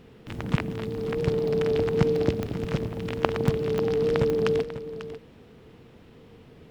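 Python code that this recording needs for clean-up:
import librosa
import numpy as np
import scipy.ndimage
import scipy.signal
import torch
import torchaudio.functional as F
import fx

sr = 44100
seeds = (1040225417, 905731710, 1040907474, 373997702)

y = fx.fix_declick_ar(x, sr, threshold=10.0)
y = fx.fix_interpolate(y, sr, at_s=(1.48, 2.16, 2.64, 3.48), length_ms=1.9)
y = fx.fix_echo_inverse(y, sr, delay_ms=544, level_db=-12.5)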